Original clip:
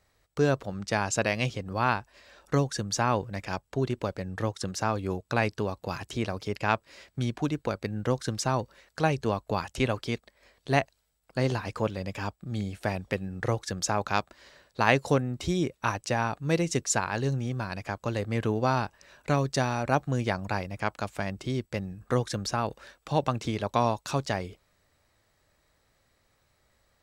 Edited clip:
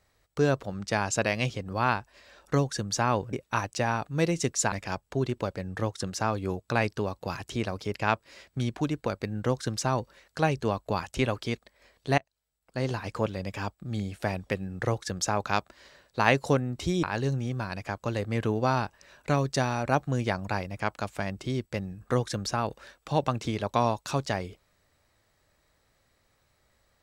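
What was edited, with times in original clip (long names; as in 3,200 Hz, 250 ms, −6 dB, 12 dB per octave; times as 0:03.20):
0:10.79–0:11.75: fade in, from −23.5 dB
0:15.64–0:17.03: move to 0:03.33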